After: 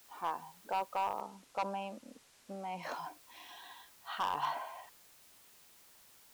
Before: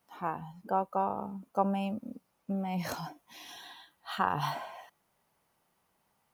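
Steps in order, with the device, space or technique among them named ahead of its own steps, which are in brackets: drive-through speaker (band-pass 390–3700 Hz; peaking EQ 1 kHz +5 dB 0.27 oct; hard clipper -24.5 dBFS, distortion -9 dB; white noise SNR 20 dB); 1.21–2.83 s: low-pass 9.7 kHz 12 dB/octave; trim -3 dB

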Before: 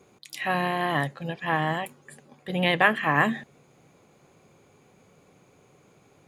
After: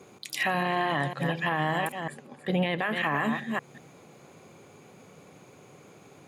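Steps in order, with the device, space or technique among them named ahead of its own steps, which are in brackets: chunks repeated in reverse 189 ms, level -10.5 dB; 0.63–1.10 s: low-pass 9.5 kHz 24 dB/octave; 2.00–2.79 s: treble shelf 4.3 kHz -9 dB; podcast mastering chain (high-pass 95 Hz; compression 2:1, threshold -31 dBFS, peak gain reduction 10 dB; peak limiter -22.5 dBFS, peak gain reduction 9.5 dB; trim +6.5 dB; MP3 96 kbps 44.1 kHz)

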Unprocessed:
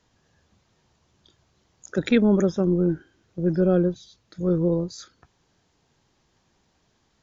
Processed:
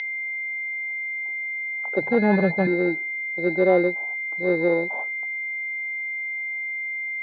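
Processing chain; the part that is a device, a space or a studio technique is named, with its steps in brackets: 2.01–2.67 s: resonant low shelf 210 Hz +10.5 dB, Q 3; toy sound module (decimation joined by straight lines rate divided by 8×; class-D stage that switches slowly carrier 2.1 kHz; cabinet simulation 520–4500 Hz, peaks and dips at 830 Hz +9 dB, 1.2 kHz -8 dB, 2.2 kHz -9 dB, 3.6 kHz +5 dB); trim +8.5 dB

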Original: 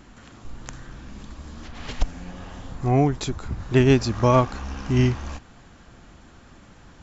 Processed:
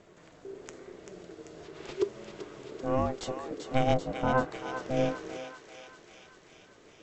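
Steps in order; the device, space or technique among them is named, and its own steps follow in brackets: alien voice (ring modulator 390 Hz; flange 0.96 Hz, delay 4.8 ms, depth 2.6 ms, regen +76%); 3.93–4.50 s: low-pass 1.1 kHz -> 2.1 kHz 12 dB/octave; thinning echo 389 ms, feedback 73%, high-pass 1.1 kHz, level -6 dB; trim -2 dB

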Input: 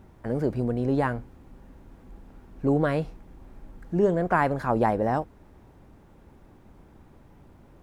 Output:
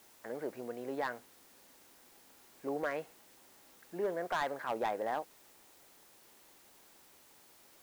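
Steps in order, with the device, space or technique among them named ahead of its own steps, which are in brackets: drive-through speaker (band-pass 460–3300 Hz; peaking EQ 2 kHz +6 dB 0.55 oct; hard clipper -19.5 dBFS, distortion -12 dB; white noise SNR 21 dB); trim -8 dB

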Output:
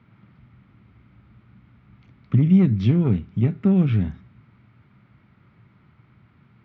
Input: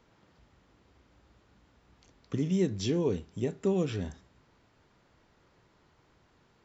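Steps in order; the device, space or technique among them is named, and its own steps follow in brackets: guitar amplifier (valve stage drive 21 dB, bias 0.5; tone controls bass +15 dB, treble +4 dB; cabinet simulation 94–3500 Hz, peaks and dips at 120 Hz +7 dB, 210 Hz +7 dB, 480 Hz -5 dB, 1.3 kHz +9 dB, 2.2 kHz +10 dB); trim +1.5 dB

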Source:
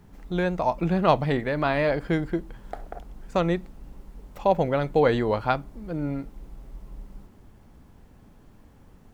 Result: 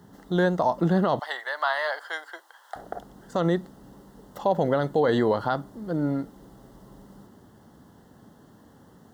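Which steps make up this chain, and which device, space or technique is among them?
1.19–2.76 s: high-pass 810 Hz 24 dB/octave; PA system with an anti-feedback notch (high-pass 140 Hz 12 dB/octave; Butterworth band-stop 2.4 kHz, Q 2.5; peak limiter -16.5 dBFS, peak gain reduction 11.5 dB); trim +4 dB

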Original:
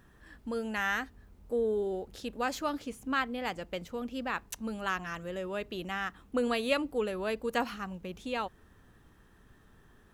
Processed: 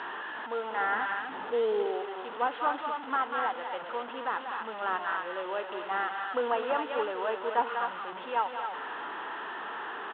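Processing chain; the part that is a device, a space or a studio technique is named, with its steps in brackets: loudspeakers at several distances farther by 66 m -11 dB, 88 m -10 dB; harmonic-percussive split harmonic +6 dB; digital answering machine (band-pass 370–3200 Hz; one-bit delta coder 16 kbps, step -32.5 dBFS; cabinet simulation 410–4400 Hz, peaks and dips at 550 Hz -4 dB, 910 Hz +8 dB, 1.4 kHz +4 dB, 2.3 kHz -10 dB, 3.4 kHz +3 dB); 0.95–1.86 s: tone controls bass +8 dB, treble 0 dB

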